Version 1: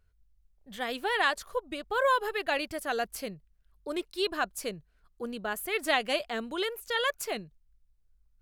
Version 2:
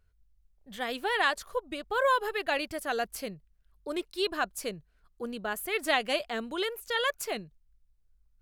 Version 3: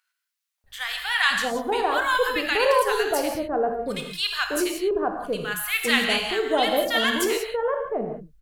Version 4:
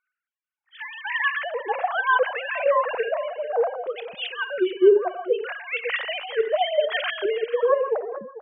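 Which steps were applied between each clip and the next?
no audible change
bands offset in time highs, lows 640 ms, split 1.1 kHz; gated-style reverb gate 210 ms flat, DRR 3 dB; trim +7.5 dB
formants replaced by sine waves; delay 443 ms -15.5 dB

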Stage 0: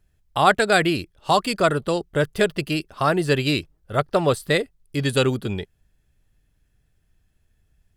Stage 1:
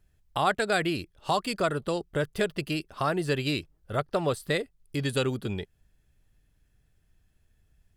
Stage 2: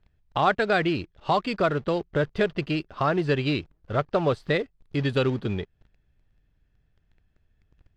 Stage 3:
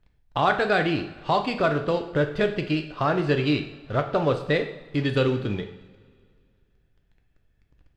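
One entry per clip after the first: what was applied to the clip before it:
compression 1.5:1, threshold -32 dBFS, peak gain reduction 8 dB; trim -1.5 dB
in parallel at -4 dB: companded quantiser 4-bit; on the sum: distance through air 190 m
two-slope reverb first 0.61 s, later 2.2 s, from -17 dB, DRR 5 dB

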